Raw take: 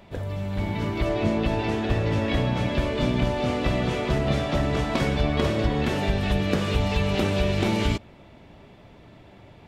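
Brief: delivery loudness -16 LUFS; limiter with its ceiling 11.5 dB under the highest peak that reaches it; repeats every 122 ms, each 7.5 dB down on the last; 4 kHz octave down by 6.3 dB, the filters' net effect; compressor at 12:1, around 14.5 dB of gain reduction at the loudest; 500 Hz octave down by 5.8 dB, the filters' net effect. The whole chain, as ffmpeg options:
-af "equalizer=f=500:t=o:g=-7.5,equalizer=f=4000:t=o:g=-8.5,acompressor=threshold=0.02:ratio=12,alimiter=level_in=3.76:limit=0.0631:level=0:latency=1,volume=0.266,aecho=1:1:122|244|366|488|610:0.422|0.177|0.0744|0.0312|0.0131,volume=23.7"

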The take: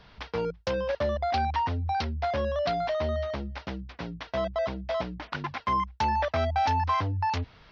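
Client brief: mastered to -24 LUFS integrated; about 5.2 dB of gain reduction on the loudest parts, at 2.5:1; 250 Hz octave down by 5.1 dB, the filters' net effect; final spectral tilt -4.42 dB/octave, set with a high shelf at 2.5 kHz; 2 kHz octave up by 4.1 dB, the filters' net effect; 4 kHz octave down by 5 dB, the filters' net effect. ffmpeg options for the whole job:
-af "equalizer=f=250:t=o:g=-7,equalizer=f=2000:t=o:g=9,highshelf=f=2500:g=-6.5,equalizer=f=4000:t=o:g=-4.5,acompressor=threshold=0.0316:ratio=2.5,volume=2.82"

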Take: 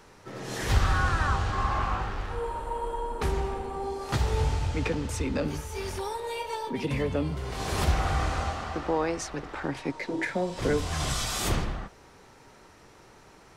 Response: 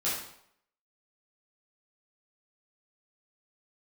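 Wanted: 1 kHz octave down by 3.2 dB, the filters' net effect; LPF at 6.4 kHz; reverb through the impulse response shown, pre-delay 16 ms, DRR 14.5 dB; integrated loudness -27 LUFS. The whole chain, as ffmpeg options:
-filter_complex "[0:a]lowpass=6400,equalizer=f=1000:t=o:g=-4,asplit=2[s0][s1];[1:a]atrim=start_sample=2205,adelay=16[s2];[s1][s2]afir=irnorm=-1:irlink=0,volume=0.0794[s3];[s0][s3]amix=inputs=2:normalize=0,volume=1.5"

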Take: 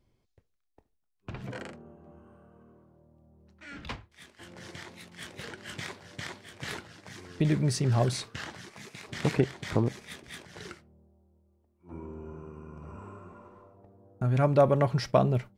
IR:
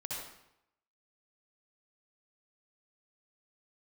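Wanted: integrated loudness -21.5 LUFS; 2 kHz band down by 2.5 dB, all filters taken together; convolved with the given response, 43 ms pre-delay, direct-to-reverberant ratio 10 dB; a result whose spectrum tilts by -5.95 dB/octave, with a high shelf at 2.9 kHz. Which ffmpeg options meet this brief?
-filter_complex "[0:a]equalizer=f=2000:t=o:g=-5,highshelf=f=2900:g=5,asplit=2[s0][s1];[1:a]atrim=start_sample=2205,adelay=43[s2];[s1][s2]afir=irnorm=-1:irlink=0,volume=0.282[s3];[s0][s3]amix=inputs=2:normalize=0,volume=2.37"

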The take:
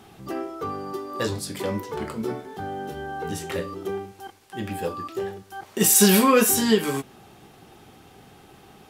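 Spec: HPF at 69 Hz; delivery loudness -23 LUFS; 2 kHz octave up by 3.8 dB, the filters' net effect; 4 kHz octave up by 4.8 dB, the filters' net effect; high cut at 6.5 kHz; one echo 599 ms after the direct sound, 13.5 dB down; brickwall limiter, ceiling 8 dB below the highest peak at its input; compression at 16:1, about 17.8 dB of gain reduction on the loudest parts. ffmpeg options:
-af "highpass=69,lowpass=6500,equalizer=f=2000:t=o:g=3.5,equalizer=f=4000:t=o:g=6,acompressor=threshold=0.0316:ratio=16,alimiter=level_in=1.41:limit=0.0631:level=0:latency=1,volume=0.708,aecho=1:1:599:0.211,volume=4.73"

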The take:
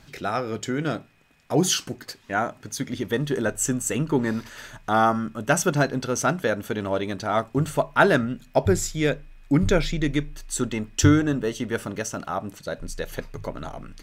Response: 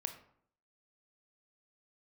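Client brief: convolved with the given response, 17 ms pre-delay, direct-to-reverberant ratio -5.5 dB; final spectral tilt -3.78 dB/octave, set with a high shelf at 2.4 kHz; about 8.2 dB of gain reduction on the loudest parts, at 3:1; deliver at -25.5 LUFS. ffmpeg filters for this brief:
-filter_complex "[0:a]highshelf=f=2400:g=6,acompressor=threshold=0.0794:ratio=3,asplit=2[s0][s1];[1:a]atrim=start_sample=2205,adelay=17[s2];[s1][s2]afir=irnorm=-1:irlink=0,volume=2.11[s3];[s0][s3]amix=inputs=2:normalize=0,volume=0.596"

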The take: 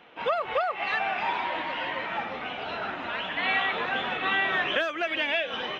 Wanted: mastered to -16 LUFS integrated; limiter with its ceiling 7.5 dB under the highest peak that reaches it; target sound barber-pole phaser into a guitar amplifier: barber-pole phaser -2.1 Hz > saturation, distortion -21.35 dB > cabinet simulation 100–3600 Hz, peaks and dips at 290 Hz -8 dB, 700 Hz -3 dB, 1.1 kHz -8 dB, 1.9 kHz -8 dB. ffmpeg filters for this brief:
-filter_complex "[0:a]alimiter=limit=0.075:level=0:latency=1,asplit=2[s0][s1];[s1]afreqshift=-2.1[s2];[s0][s2]amix=inputs=2:normalize=1,asoftclip=threshold=0.0501,highpass=100,equalizer=f=290:t=q:w=4:g=-8,equalizer=f=700:t=q:w=4:g=-3,equalizer=f=1100:t=q:w=4:g=-8,equalizer=f=1900:t=q:w=4:g=-8,lowpass=f=3600:w=0.5412,lowpass=f=3600:w=1.3066,volume=12.6"

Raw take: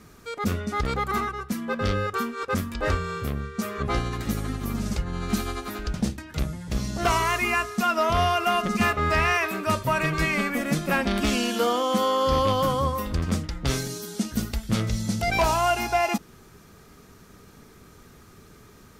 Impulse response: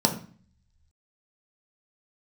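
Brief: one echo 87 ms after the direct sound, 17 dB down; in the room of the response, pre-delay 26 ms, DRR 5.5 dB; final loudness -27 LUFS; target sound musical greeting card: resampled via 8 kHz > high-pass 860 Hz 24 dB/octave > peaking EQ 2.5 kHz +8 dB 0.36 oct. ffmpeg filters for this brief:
-filter_complex "[0:a]aecho=1:1:87:0.141,asplit=2[s0][s1];[1:a]atrim=start_sample=2205,adelay=26[s2];[s1][s2]afir=irnorm=-1:irlink=0,volume=0.119[s3];[s0][s3]amix=inputs=2:normalize=0,aresample=8000,aresample=44100,highpass=f=860:w=0.5412,highpass=f=860:w=1.3066,equalizer=f=2500:t=o:w=0.36:g=8,volume=0.794"

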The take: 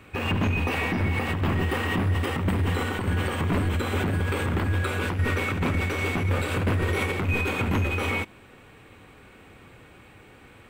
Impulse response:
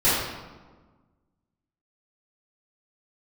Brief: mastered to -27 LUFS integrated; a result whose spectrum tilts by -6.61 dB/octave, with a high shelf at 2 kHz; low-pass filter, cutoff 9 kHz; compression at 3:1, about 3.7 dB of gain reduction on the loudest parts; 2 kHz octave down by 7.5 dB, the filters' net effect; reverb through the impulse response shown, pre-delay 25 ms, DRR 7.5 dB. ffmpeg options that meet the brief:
-filter_complex "[0:a]lowpass=9000,highshelf=f=2000:g=-4,equalizer=f=2000:t=o:g=-7,acompressor=threshold=0.0501:ratio=3,asplit=2[s0][s1];[1:a]atrim=start_sample=2205,adelay=25[s2];[s1][s2]afir=irnorm=-1:irlink=0,volume=0.0531[s3];[s0][s3]amix=inputs=2:normalize=0,volume=1.26"

